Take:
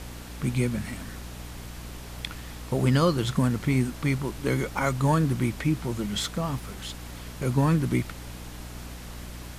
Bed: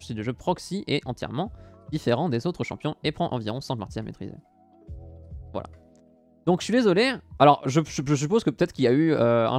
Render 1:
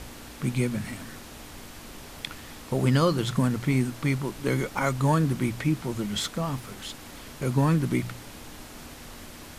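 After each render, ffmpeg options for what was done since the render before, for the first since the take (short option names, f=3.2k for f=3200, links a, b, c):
-af "bandreject=f=60:t=h:w=4,bandreject=f=120:t=h:w=4,bandreject=f=180:t=h:w=4"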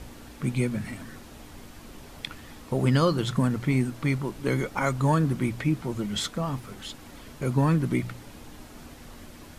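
-af "afftdn=nr=6:nf=-44"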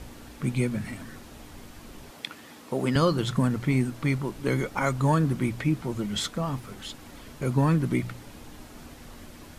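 -filter_complex "[0:a]asettb=1/sr,asplit=3[a][b][c];[a]atrim=end=2.114[d];[b]atrim=start=2.11:end=2.96,asetpts=PTS-STARTPTS,afade=t=in:d=0.004:c=qsin,afade=t=out:st=0.846:d=0.004:c=qsin,highpass=200[e];[c]atrim=start=2.956[f];[d][e]acrossfade=d=0.004:c1=hsin:c2=qsin[g];[g][f]acrossfade=d=0.004:c1=qsin:c2=hsin"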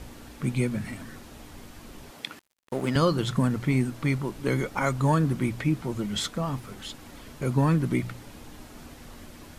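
-filter_complex "[0:a]asettb=1/sr,asplit=3[a][b][c];[a]atrim=end=2.394[d];[b]atrim=start=2.39:end=2.97,asetpts=PTS-STARTPTS,afade=t=in:d=0.004:c=qsin,afade=t=out:st=0.576:d=0.004:c=qsin,aeval=exprs='sgn(val(0))*max(abs(val(0))-0.0112,0)':c=same[e];[c]atrim=start=2.966[f];[d][e]acrossfade=d=0.004:c1=hsin:c2=qsin[g];[g][f]acrossfade=d=0.004:c1=qsin:c2=hsin"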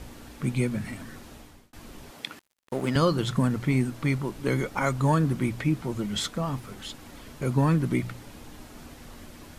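-filter_complex "[0:a]asplit=2[a][b];[a]atrim=end=1.73,asetpts=PTS-STARTPTS,afade=t=out:st=1.32:d=0.41[c];[b]atrim=start=1.73,asetpts=PTS-STARTPTS,afade=t=in:d=0.004:c=hsin[d];[c][d]concat=n=2:v=0:a=1"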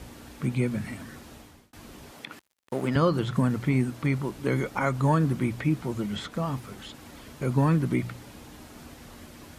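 -filter_complex "[0:a]acrossover=split=2800[a][b];[b]acompressor=threshold=-45dB:ratio=4:attack=1:release=60[c];[a][c]amix=inputs=2:normalize=0,highpass=46"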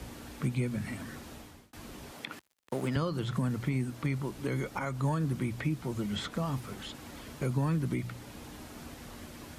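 -filter_complex "[0:a]alimiter=limit=-17.5dB:level=0:latency=1:release=498,acrossover=split=130|3000[a][b][c];[b]acompressor=threshold=-34dB:ratio=2[d];[a][d][c]amix=inputs=3:normalize=0"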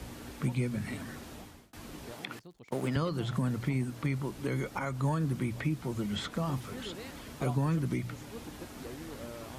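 -filter_complex "[1:a]volume=-25dB[a];[0:a][a]amix=inputs=2:normalize=0"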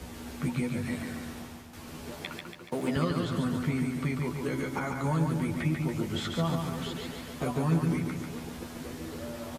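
-filter_complex "[0:a]asplit=2[a][b];[b]adelay=12,volume=-4dB[c];[a][c]amix=inputs=2:normalize=0,aecho=1:1:142|284|426|568|710|852|994:0.596|0.328|0.18|0.0991|0.0545|0.03|0.0165"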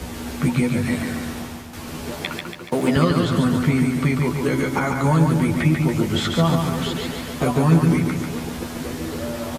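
-af "volume=11dB"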